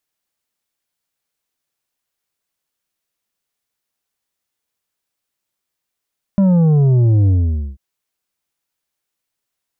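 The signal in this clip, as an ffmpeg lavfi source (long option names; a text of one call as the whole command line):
ffmpeg -f lavfi -i "aevalsrc='0.316*clip((1.39-t)/0.49,0,1)*tanh(2.24*sin(2*PI*200*1.39/log(65/200)*(exp(log(65/200)*t/1.39)-1)))/tanh(2.24)':duration=1.39:sample_rate=44100" out.wav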